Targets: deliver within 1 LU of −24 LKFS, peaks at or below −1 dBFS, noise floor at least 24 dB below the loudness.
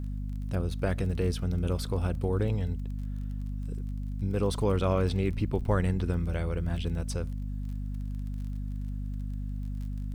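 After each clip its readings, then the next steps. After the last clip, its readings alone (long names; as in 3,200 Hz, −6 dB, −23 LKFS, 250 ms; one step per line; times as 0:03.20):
crackle rate 27 per second; mains hum 50 Hz; hum harmonics up to 250 Hz; level of the hum −31 dBFS; integrated loudness −31.5 LKFS; sample peak −14.5 dBFS; target loudness −24.0 LKFS
→ click removal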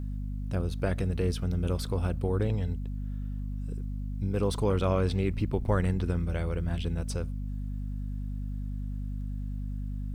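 crackle rate 0.30 per second; mains hum 50 Hz; hum harmonics up to 250 Hz; level of the hum −31 dBFS
→ mains-hum notches 50/100/150/200/250 Hz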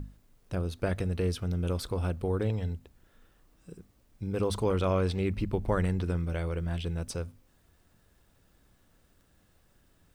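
mains hum none found; integrated loudness −31.5 LKFS; sample peak −15.5 dBFS; target loudness −24.0 LKFS
→ level +7.5 dB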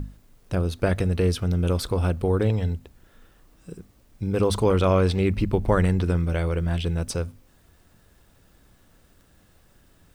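integrated loudness −24.0 LKFS; sample peak −8.0 dBFS; background noise floor −58 dBFS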